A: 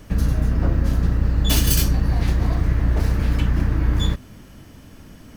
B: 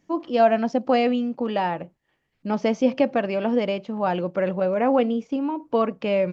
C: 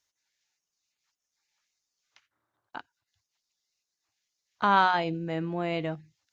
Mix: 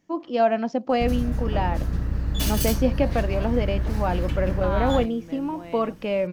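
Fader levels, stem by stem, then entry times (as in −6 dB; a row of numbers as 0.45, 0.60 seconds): −6.5, −2.5, −10.0 decibels; 0.90, 0.00, 0.00 seconds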